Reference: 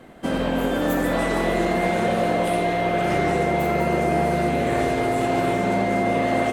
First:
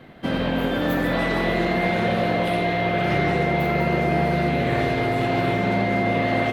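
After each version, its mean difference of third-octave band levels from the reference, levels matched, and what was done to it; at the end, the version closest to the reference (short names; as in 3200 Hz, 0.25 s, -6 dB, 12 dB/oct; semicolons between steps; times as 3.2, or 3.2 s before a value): 3.0 dB: graphic EQ 125/2000/4000/8000 Hz +8/+4/+7/-12 dB; gain -2 dB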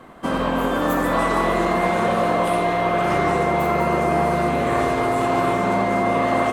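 2.0 dB: bell 1100 Hz +12 dB 0.53 oct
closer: second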